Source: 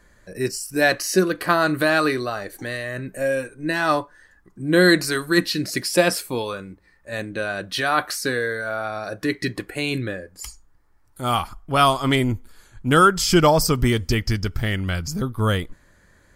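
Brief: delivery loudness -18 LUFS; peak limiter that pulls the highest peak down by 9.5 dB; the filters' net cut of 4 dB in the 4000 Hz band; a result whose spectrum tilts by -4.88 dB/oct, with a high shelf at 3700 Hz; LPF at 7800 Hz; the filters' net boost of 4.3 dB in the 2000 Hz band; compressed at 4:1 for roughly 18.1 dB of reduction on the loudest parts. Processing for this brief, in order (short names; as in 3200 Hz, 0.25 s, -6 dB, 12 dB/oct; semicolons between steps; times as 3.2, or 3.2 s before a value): LPF 7800 Hz; bell 2000 Hz +7.5 dB; high shelf 3700 Hz -4.5 dB; bell 4000 Hz -4.5 dB; compressor 4:1, threshold -32 dBFS; gain +18 dB; limiter -7 dBFS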